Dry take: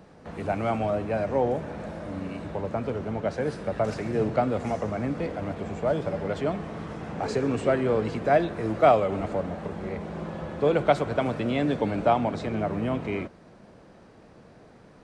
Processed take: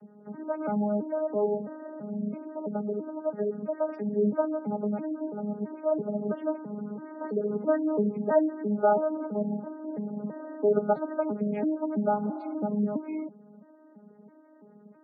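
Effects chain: vocoder on a broken chord bare fifth, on G#3, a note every 332 ms; spectral gate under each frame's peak -25 dB strong; comb of notches 340 Hz; spectral replace 12.26–12.51 s, 580–2000 Hz before

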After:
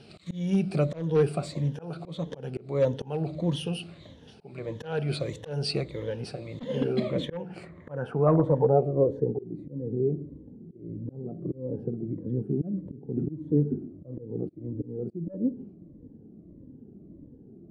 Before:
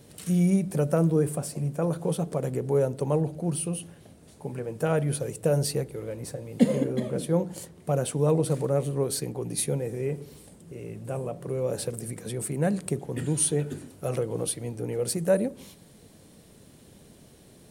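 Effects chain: drifting ripple filter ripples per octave 1.1, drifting -1.6 Hz, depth 12 dB; hard clipper -14.5 dBFS, distortion -18 dB; slow attack 296 ms; low-pass sweep 3.7 kHz -> 300 Hz, 6.99–9.64 s

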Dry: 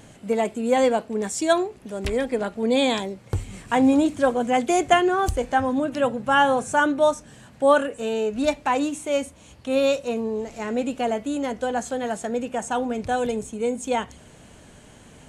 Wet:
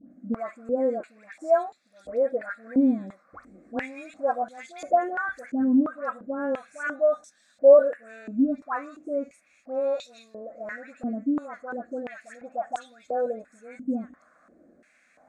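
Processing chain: static phaser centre 610 Hz, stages 8; phase dispersion highs, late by 109 ms, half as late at 1.5 kHz; step-sequenced band-pass 2.9 Hz 260–3600 Hz; trim +6 dB

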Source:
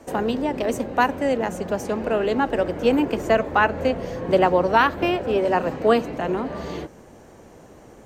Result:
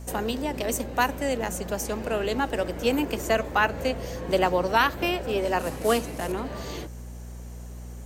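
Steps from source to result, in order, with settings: 5.59–6.32 s: CVSD coder 64 kbps; pre-emphasis filter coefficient 0.8; mains buzz 60 Hz, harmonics 4, -47 dBFS -8 dB/octave; trim +8 dB

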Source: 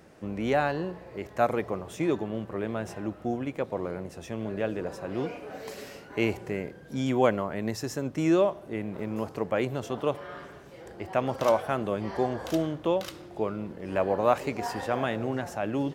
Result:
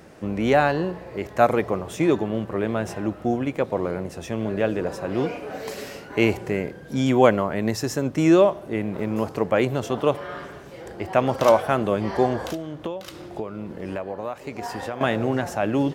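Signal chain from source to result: 12.41–15.01 s: compression 12:1, threshold -34 dBFS, peak gain reduction 17.5 dB; trim +7 dB

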